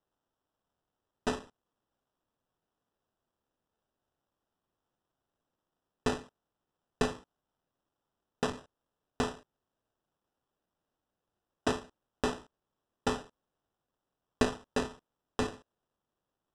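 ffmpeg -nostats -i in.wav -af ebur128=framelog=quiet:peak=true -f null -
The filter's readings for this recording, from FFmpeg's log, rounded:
Integrated loudness:
  I:         -35.9 LUFS
  Threshold: -46.9 LUFS
Loudness range:
  LRA:         8.0 LU
  Threshold: -60.5 LUFS
  LRA low:   -45.5 LUFS
  LRA high:  -37.6 LUFS
True peak:
  Peak:      -11.6 dBFS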